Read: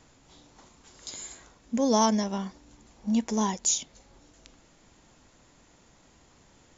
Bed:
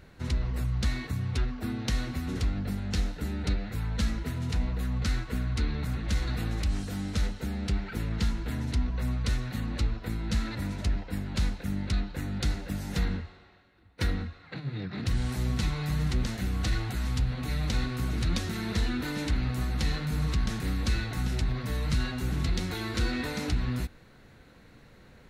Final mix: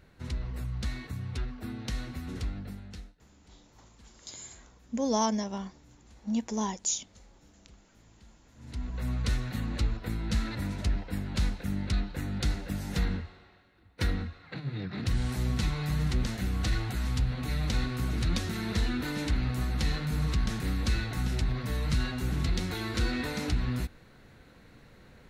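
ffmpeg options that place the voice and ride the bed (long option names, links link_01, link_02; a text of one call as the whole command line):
ffmpeg -i stem1.wav -i stem2.wav -filter_complex "[0:a]adelay=3200,volume=-4.5dB[link_01];[1:a]volume=23dB,afade=type=out:start_time=2.46:duration=0.7:silence=0.0668344,afade=type=in:start_time=8.55:duration=0.64:silence=0.0375837[link_02];[link_01][link_02]amix=inputs=2:normalize=0" out.wav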